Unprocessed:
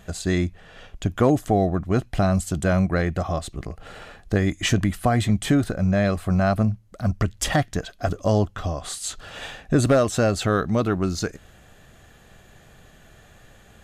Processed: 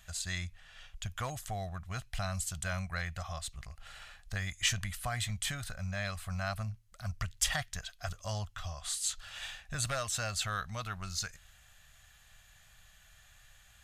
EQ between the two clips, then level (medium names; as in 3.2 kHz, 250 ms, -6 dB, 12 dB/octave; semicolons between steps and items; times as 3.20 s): amplifier tone stack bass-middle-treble 10-0-10; peaking EQ 420 Hz -8 dB 0.63 oct; -2.5 dB